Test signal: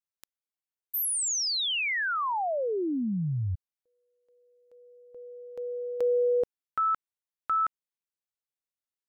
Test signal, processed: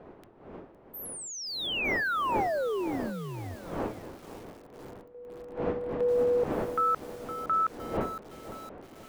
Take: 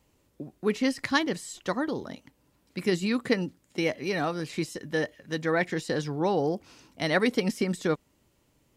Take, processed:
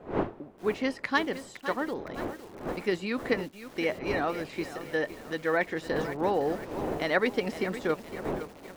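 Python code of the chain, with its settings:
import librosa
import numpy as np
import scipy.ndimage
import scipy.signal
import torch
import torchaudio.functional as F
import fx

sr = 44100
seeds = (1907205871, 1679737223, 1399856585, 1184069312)

y = fx.dmg_wind(x, sr, seeds[0], corner_hz=370.0, level_db=-35.0)
y = fx.bass_treble(y, sr, bass_db=-11, treble_db=-12)
y = fx.echo_crushed(y, sr, ms=512, feedback_pct=55, bits=7, wet_db=-11.5)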